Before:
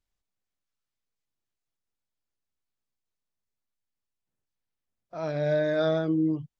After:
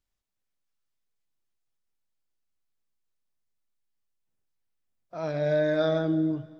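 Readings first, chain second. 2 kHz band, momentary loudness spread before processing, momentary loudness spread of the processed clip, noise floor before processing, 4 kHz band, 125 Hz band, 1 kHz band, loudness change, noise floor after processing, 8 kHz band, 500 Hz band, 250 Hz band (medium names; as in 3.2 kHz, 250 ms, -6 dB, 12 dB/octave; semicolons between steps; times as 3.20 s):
+0.5 dB, 10 LU, 10 LU, under -85 dBFS, +0.5 dB, 0.0 dB, 0.0 dB, 0.0 dB, -82 dBFS, no reading, +0.5 dB, -0.5 dB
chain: Schroeder reverb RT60 1.7 s, combs from 29 ms, DRR 13 dB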